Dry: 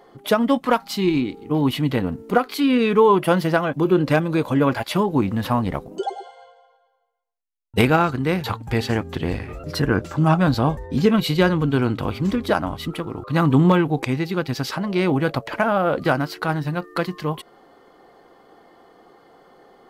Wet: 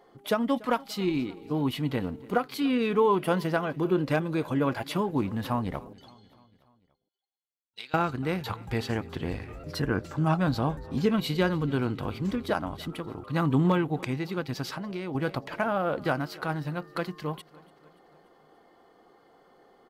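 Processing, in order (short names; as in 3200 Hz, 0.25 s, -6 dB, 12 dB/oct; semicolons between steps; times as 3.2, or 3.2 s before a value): 5.93–7.94 band-pass 4100 Hz, Q 3.7; feedback echo 0.289 s, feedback 58%, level -22.5 dB; 14.68–15.15 compressor 6:1, threshold -24 dBFS, peak gain reduction 8 dB; gain -8 dB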